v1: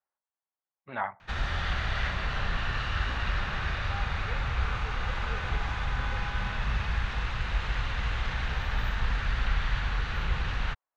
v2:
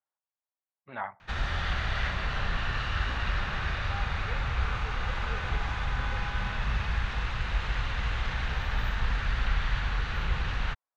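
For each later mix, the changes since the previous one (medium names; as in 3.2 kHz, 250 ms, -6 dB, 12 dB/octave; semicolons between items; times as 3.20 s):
speech -3.5 dB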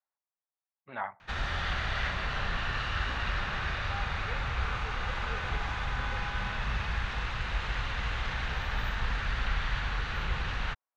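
master: add bass shelf 190 Hz -4 dB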